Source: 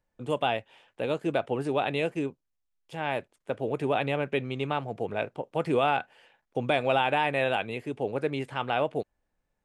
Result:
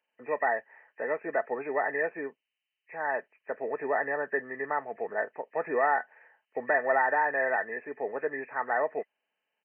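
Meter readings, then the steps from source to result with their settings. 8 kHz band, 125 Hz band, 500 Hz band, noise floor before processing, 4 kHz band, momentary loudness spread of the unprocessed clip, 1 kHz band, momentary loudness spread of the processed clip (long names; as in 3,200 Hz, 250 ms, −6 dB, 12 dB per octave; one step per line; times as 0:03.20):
can't be measured, −22.5 dB, −2.0 dB, −80 dBFS, below −40 dB, 10 LU, −0.5 dB, 12 LU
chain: hearing-aid frequency compression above 1,600 Hz 4 to 1
high-pass filter 480 Hz 12 dB per octave
comb filter 4.6 ms, depth 30%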